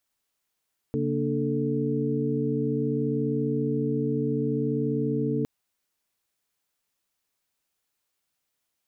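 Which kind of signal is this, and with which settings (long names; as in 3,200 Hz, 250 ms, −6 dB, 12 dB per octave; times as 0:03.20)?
held notes C#3/A#3/D4/A4 sine, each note −29 dBFS 4.51 s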